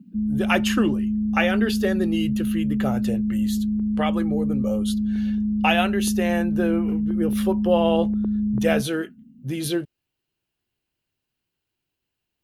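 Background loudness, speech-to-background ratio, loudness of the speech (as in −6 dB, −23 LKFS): −24.0 LKFS, −2.0 dB, −26.0 LKFS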